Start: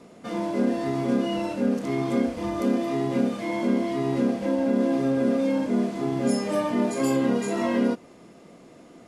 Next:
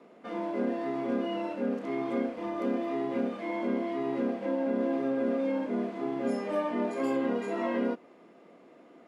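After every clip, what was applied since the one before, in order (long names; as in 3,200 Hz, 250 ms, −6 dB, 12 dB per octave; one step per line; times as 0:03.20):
three-way crossover with the lows and the highs turned down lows −21 dB, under 220 Hz, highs −16 dB, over 3,200 Hz
level −4 dB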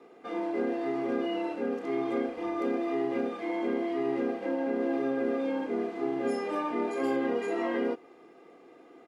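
comb filter 2.5 ms, depth 58%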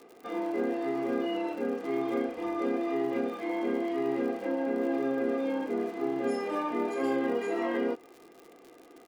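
surface crackle 100 per second −42 dBFS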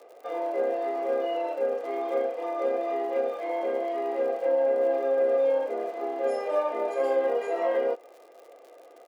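high-pass with resonance 570 Hz, resonance Q 5.9
level −2 dB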